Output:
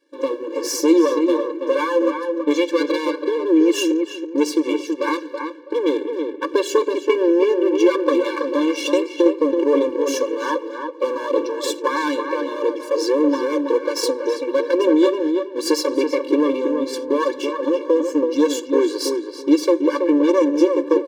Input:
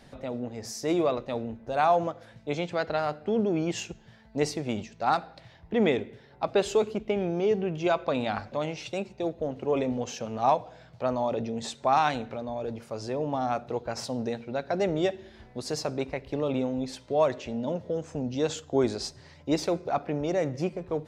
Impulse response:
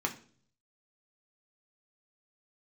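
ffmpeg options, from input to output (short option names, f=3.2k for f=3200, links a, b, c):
-filter_complex "[0:a]aeval=exprs='if(lt(val(0),0),0.251*val(0),val(0))':c=same,equalizer=f=240:t=o:w=1.2:g=9.5,agate=range=-16dB:threshold=-45dB:ratio=16:detection=peak,dynaudnorm=f=110:g=3:m=12dB,aecho=1:1:3.6:0.41,acompressor=threshold=-21dB:ratio=2.5,asplit=2[a][b];[b]adelay=328,lowpass=f=2k:p=1,volume=-5dB,asplit=2[c][d];[d]adelay=328,lowpass=f=2k:p=1,volume=0.24,asplit=2[e][f];[f]adelay=328,lowpass=f=2k:p=1,volume=0.24[g];[a][c][e][g]amix=inputs=4:normalize=0,afftfilt=real='re*eq(mod(floor(b*sr/1024/300),2),1)':imag='im*eq(mod(floor(b*sr/1024/300),2),1)':win_size=1024:overlap=0.75,volume=8dB"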